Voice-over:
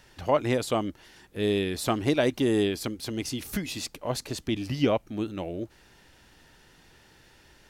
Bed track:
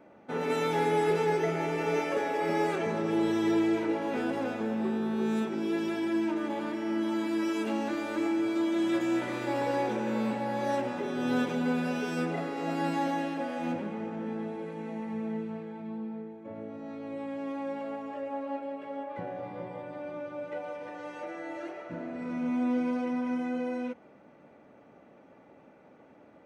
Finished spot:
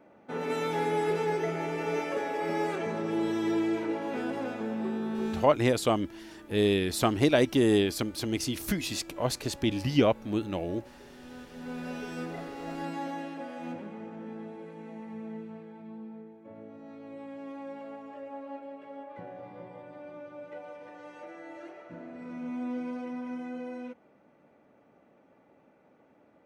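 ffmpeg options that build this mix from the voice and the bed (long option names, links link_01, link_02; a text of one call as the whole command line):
ffmpeg -i stem1.wav -i stem2.wav -filter_complex "[0:a]adelay=5150,volume=1dB[link_01];[1:a]volume=10.5dB,afade=type=out:start_time=5.26:duration=0.27:silence=0.149624,afade=type=in:start_time=11.5:duration=0.42:silence=0.237137[link_02];[link_01][link_02]amix=inputs=2:normalize=0" out.wav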